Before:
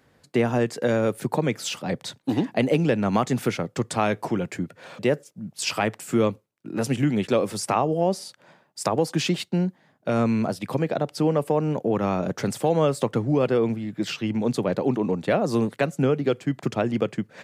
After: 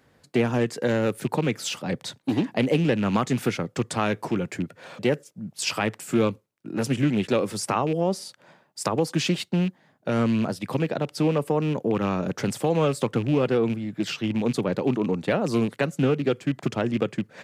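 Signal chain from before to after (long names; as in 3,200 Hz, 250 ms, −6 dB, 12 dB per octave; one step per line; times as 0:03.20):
loose part that buzzes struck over −25 dBFS, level −28 dBFS
dynamic equaliser 700 Hz, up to −5 dB, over −36 dBFS, Q 2.4
highs frequency-modulated by the lows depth 0.16 ms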